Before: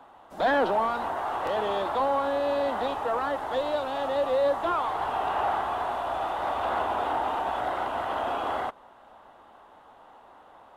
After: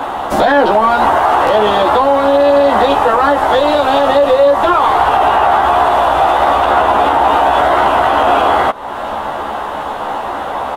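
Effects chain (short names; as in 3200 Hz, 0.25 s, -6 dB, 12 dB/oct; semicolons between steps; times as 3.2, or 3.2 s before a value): compressor 3:1, threshold -44 dBFS, peak gain reduction 17.5 dB; doubler 14 ms -2.5 dB; maximiser +31.5 dB; gain -1 dB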